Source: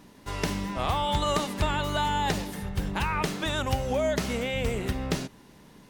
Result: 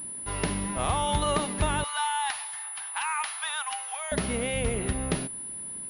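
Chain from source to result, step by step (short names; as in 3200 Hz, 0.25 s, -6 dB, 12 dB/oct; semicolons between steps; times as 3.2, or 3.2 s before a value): 1.84–4.12 steep high-pass 800 Hz 48 dB/oct; pulse-width modulation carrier 10000 Hz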